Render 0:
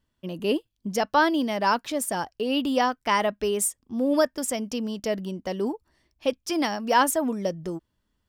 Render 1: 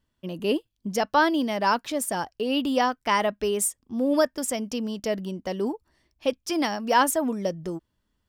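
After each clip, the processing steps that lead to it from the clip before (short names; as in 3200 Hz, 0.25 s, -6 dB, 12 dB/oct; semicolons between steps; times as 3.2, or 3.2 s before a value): nothing audible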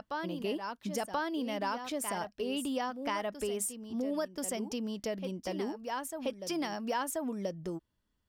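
reverse echo 1.032 s -10 dB; compressor 4:1, threshold -26 dBFS, peak gain reduction 9.5 dB; gain -5.5 dB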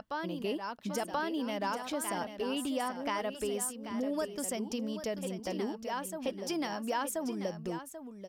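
echo 0.787 s -10.5 dB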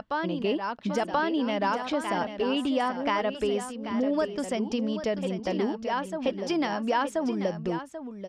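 LPF 4000 Hz 12 dB/oct; gain +7.5 dB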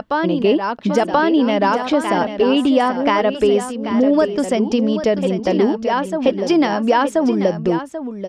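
bell 370 Hz +4.5 dB 1.8 oct; gain +8.5 dB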